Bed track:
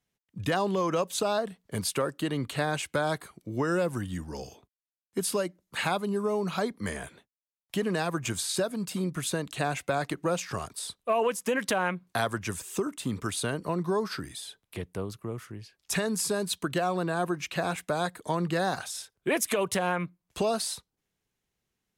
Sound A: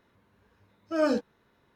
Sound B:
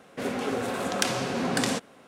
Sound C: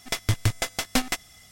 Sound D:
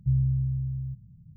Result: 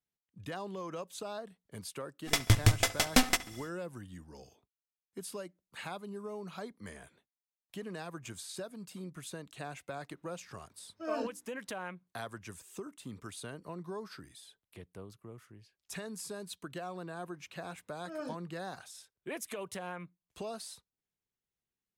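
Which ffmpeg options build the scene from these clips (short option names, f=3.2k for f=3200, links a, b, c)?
-filter_complex "[1:a]asplit=2[a][b];[0:a]volume=-13.5dB[c];[3:a]asplit=2[d][e];[e]adelay=69,lowpass=f=3.5k:p=1,volume=-17dB,asplit=2[f][g];[g]adelay=69,lowpass=f=3.5k:p=1,volume=0.52,asplit=2[h][i];[i]adelay=69,lowpass=f=3.5k:p=1,volume=0.52,asplit=2[j][k];[k]adelay=69,lowpass=f=3.5k:p=1,volume=0.52,asplit=2[l][m];[m]adelay=69,lowpass=f=3.5k:p=1,volume=0.52[n];[d][f][h][j][l][n]amix=inputs=6:normalize=0[o];[a]bandreject=f=60:t=h:w=6,bandreject=f=120:t=h:w=6,bandreject=f=180:t=h:w=6,bandreject=f=240:t=h:w=6,bandreject=f=300:t=h:w=6,bandreject=f=360:t=h:w=6[p];[o]atrim=end=1.51,asetpts=PTS-STARTPTS,volume=-0.5dB,afade=t=in:d=0.1,afade=t=out:st=1.41:d=0.1,adelay=2210[q];[p]atrim=end=1.75,asetpts=PTS-STARTPTS,volume=-11.5dB,afade=t=in:d=0.004:c=hsin,afade=t=out:st=1.746:d=0.004:c=hsin,adelay=10090[r];[b]atrim=end=1.75,asetpts=PTS-STARTPTS,volume=-16dB,afade=t=in:d=0.004:c=hsin,afade=t=out:st=1.746:d=0.004:c=hsin,adelay=756756S[s];[c][q][r][s]amix=inputs=4:normalize=0"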